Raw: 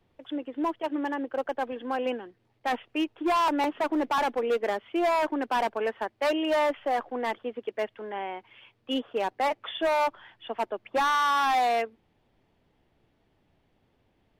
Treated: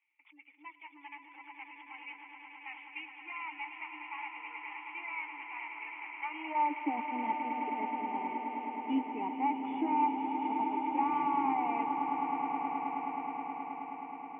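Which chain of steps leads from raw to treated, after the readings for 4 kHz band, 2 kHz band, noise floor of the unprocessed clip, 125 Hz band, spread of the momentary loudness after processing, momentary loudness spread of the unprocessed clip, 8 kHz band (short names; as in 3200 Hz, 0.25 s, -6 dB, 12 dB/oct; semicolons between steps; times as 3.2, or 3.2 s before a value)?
-17.5 dB, -7.5 dB, -70 dBFS, n/a, 18 LU, 11 LU, under -30 dB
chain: CVSD 16 kbps; low shelf 170 Hz -5 dB; spectral gate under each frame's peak -30 dB strong; high-pass sweep 2000 Hz -> 160 Hz, 6.11–7.11; vowel filter u; swelling echo 0.106 s, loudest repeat 8, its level -10.5 dB; gain +4.5 dB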